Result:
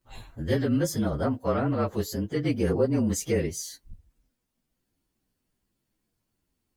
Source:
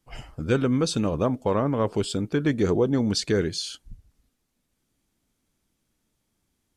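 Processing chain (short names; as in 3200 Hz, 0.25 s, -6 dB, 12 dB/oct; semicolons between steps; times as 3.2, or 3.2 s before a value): inharmonic rescaling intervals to 112%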